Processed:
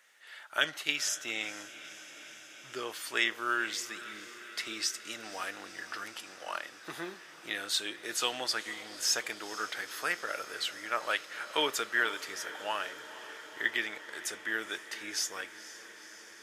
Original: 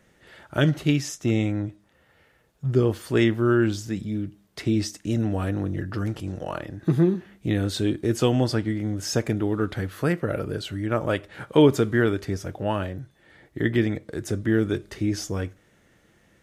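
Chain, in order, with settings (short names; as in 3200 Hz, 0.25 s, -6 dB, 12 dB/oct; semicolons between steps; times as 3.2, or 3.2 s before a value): HPF 1300 Hz 12 dB/oct; diffused feedback echo 0.49 s, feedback 77%, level -15.5 dB; gain +2 dB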